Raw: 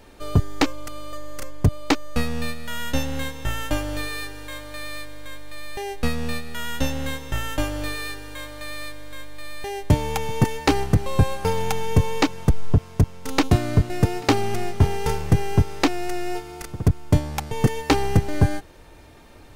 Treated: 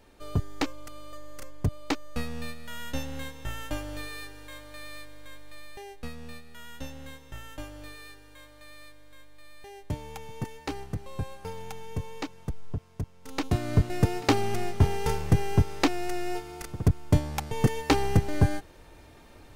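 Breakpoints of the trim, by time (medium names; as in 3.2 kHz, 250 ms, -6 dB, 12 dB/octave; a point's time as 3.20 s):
5.54 s -9 dB
6.06 s -15.5 dB
13.15 s -15.5 dB
13.79 s -4 dB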